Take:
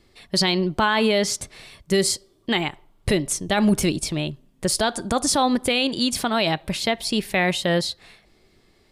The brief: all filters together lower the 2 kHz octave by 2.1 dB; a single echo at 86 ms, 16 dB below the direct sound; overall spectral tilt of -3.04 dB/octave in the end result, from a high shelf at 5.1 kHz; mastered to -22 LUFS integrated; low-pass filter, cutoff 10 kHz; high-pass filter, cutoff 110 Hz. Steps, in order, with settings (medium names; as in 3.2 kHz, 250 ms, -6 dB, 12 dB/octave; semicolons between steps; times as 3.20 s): high-pass 110 Hz; low-pass 10 kHz; peaking EQ 2 kHz -3.5 dB; treble shelf 5.1 kHz +6 dB; delay 86 ms -16 dB; trim -0.5 dB